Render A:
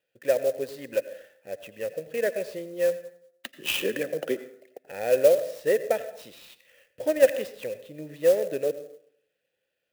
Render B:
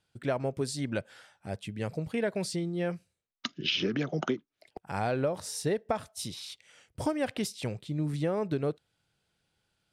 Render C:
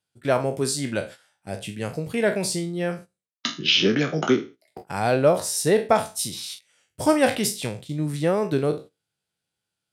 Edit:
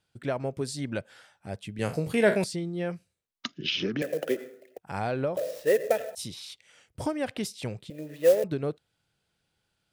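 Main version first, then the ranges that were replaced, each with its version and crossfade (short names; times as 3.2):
B
1.79–2.44 from C
4.02–4.78 from A
5.37–6.15 from A
7.9–8.44 from A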